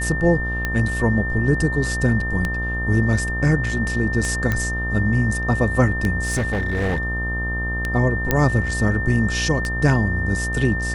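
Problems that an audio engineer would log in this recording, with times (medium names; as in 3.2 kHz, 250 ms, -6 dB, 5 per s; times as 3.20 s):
buzz 60 Hz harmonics 22 -26 dBFS
tick 33 1/3 rpm -9 dBFS
whine 1.8 kHz -25 dBFS
4.52 s: pop -9 dBFS
6.22–7.47 s: clipped -17.5 dBFS
8.31 s: pop -3 dBFS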